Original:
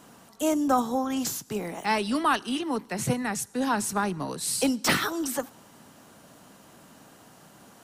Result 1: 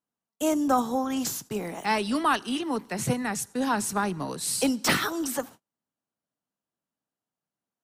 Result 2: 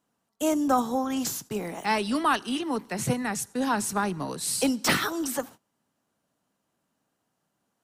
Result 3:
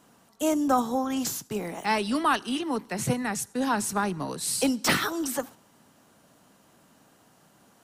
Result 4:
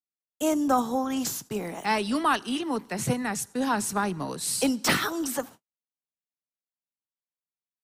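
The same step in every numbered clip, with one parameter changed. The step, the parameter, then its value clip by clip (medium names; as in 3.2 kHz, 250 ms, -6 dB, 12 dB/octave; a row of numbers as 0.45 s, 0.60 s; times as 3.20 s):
gate, range: -40 dB, -25 dB, -7 dB, -60 dB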